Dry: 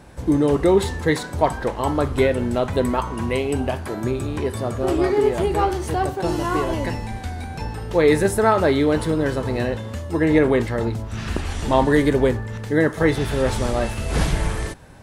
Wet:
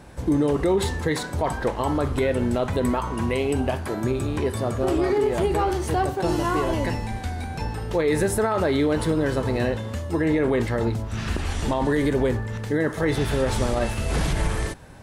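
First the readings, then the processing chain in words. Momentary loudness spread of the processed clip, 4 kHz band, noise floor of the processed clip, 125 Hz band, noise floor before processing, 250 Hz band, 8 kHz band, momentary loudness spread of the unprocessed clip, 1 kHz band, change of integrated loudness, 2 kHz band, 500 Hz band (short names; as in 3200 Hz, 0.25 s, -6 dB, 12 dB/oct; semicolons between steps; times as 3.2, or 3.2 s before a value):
6 LU, -2.0 dB, -33 dBFS, -1.5 dB, -33 dBFS, -2.5 dB, -0.5 dB, 10 LU, -3.5 dB, -3.0 dB, -3.5 dB, -3.5 dB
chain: limiter -13.5 dBFS, peak gain reduction 10.5 dB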